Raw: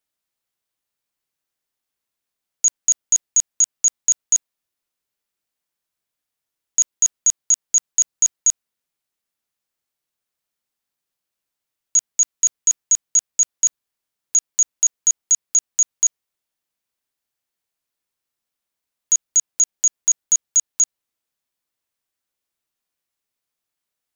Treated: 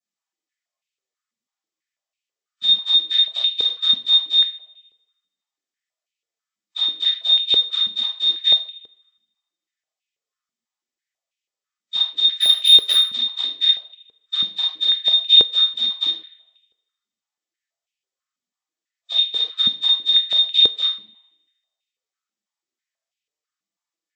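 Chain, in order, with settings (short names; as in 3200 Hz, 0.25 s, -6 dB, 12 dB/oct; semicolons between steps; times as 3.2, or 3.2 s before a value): nonlinear frequency compression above 1100 Hz 1.5:1; in parallel at +2.5 dB: limiter -18.5 dBFS, peak gain reduction 10.5 dB; on the sum: spectral noise reduction 14 dB; flange 0.21 Hz, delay 5.7 ms, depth 5 ms, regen -1%; 12.31–13.07 overdrive pedal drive 31 dB, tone 4100 Hz, clips at -8 dBFS; analogue delay 78 ms, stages 2048, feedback 65%, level -21 dB; shoebox room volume 440 m³, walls furnished, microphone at 6.2 m; stepped high-pass 6.1 Hz 220–2600 Hz; gain -7 dB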